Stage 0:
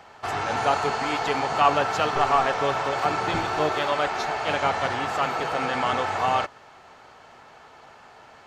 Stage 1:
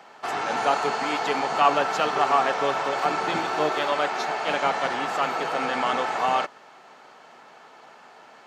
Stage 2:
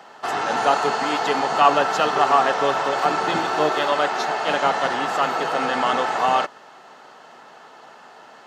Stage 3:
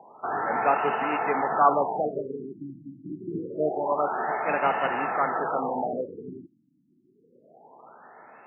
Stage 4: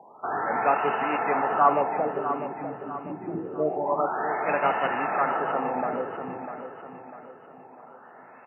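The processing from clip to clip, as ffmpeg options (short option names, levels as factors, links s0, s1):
-af "highpass=f=170:w=0.5412,highpass=f=170:w=1.3066"
-af "bandreject=f=2300:w=8.2,volume=1.58"
-af "afftfilt=real='re*lt(b*sr/1024,330*pow(3000/330,0.5+0.5*sin(2*PI*0.26*pts/sr)))':imag='im*lt(b*sr/1024,330*pow(3000/330,0.5+0.5*sin(2*PI*0.26*pts/sr)))':win_size=1024:overlap=0.75,volume=0.631"
-af "aecho=1:1:648|1296|1944|2592|3240:0.335|0.147|0.0648|0.0285|0.0126"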